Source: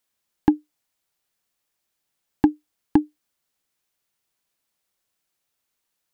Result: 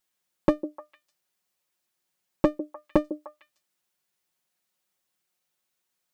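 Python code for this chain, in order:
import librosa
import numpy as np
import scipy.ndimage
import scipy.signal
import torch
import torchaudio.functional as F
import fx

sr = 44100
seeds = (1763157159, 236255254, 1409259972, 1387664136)

y = fx.lower_of_two(x, sr, delay_ms=5.5)
y = fx.highpass(y, sr, hz=58.0, slope=6)
y = fx.echo_stepped(y, sr, ms=151, hz=370.0, octaves=1.4, feedback_pct=70, wet_db=-10)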